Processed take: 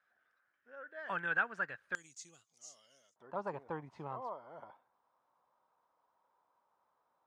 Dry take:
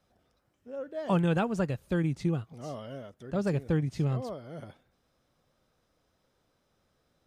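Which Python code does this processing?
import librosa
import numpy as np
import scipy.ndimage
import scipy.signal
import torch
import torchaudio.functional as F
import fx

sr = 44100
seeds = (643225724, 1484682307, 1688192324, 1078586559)

y = fx.bandpass_q(x, sr, hz=fx.steps((0.0, 1600.0), (1.95, 6800.0), (3.16, 960.0)), q=6.5)
y = y * librosa.db_to_amplitude(9.5)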